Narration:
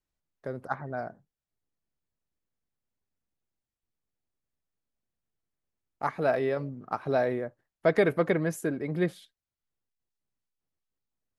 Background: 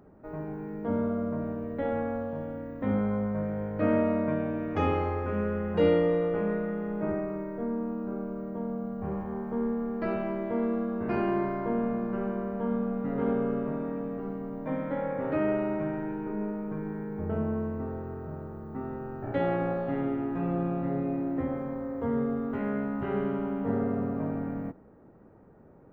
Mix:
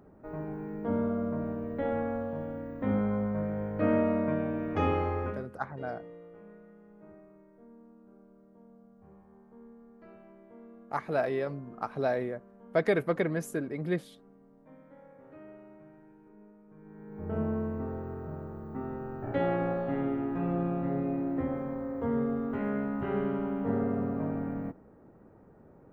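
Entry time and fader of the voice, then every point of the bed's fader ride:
4.90 s, -3.0 dB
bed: 5.27 s -1 dB
5.50 s -22.5 dB
16.66 s -22.5 dB
17.39 s -1 dB

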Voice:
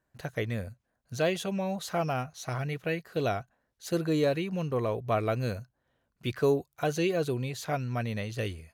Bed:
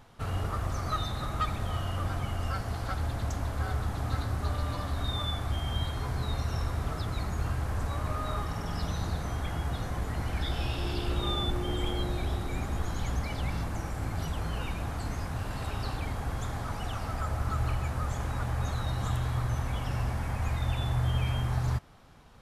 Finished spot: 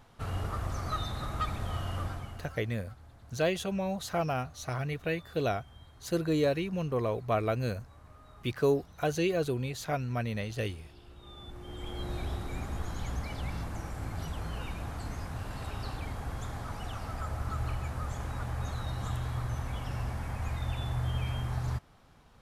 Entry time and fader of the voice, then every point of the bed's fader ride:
2.20 s, -1.0 dB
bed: 2.01 s -2.5 dB
2.76 s -22 dB
11.18 s -22 dB
12.14 s -4 dB

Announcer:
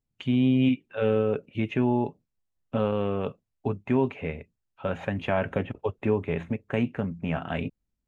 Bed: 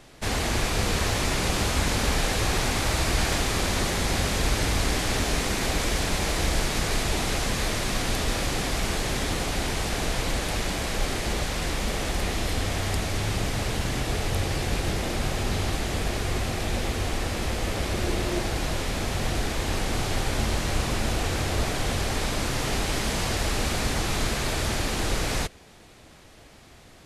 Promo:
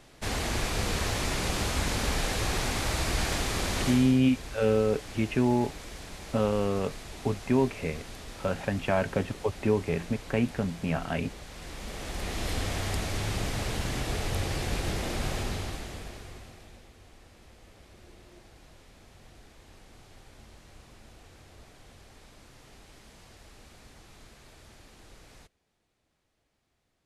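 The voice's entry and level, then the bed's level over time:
3.60 s, -0.5 dB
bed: 3.89 s -4.5 dB
4.20 s -17 dB
11.43 s -17 dB
12.50 s -4 dB
15.37 s -4 dB
16.90 s -26.5 dB

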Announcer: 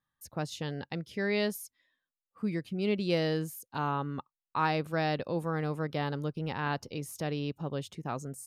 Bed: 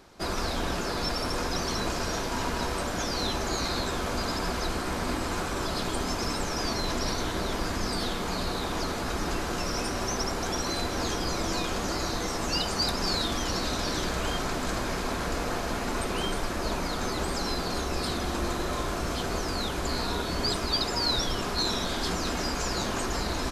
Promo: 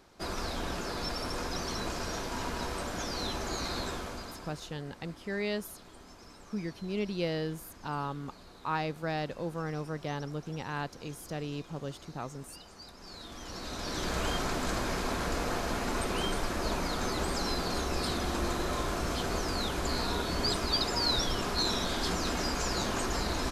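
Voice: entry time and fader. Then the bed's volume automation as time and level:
4.10 s, -3.5 dB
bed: 3.89 s -5.5 dB
4.74 s -22.5 dB
12.94 s -22.5 dB
14.16 s -2 dB

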